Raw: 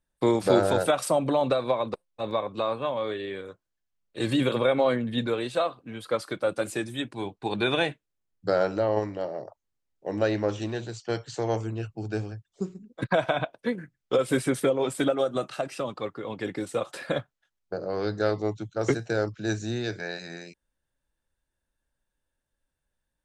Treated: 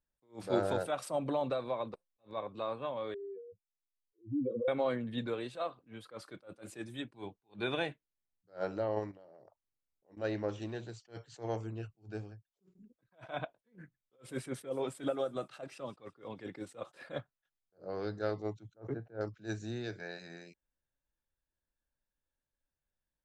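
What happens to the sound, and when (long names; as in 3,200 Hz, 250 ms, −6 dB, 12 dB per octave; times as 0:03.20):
0:03.14–0:04.68: expanding power law on the bin magnitudes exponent 3.9
0:09.11–0:10.17: downward compressor, threshold −45 dBFS
0:11.99–0:12.75: fade out, to −14 dB
0:14.40–0:16.69: delay with a high-pass on its return 166 ms, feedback 59%, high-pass 3,900 Hz, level −16 dB
0:18.74–0:19.21: low-pass filter 1,200 Hz
whole clip: high-shelf EQ 4,600 Hz −6 dB; level that may rise only so fast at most 250 dB per second; level −9 dB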